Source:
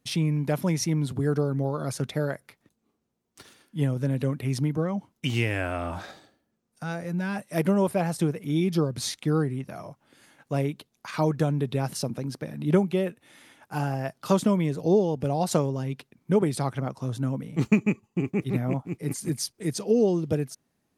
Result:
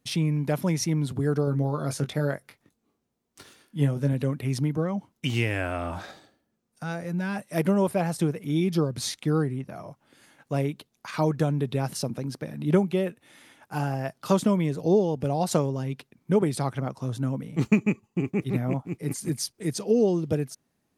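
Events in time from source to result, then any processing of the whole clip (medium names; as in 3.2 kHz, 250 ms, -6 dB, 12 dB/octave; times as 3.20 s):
1.45–4.13 s: doubling 21 ms -7.5 dB
9.32–9.88 s: tape noise reduction on one side only decoder only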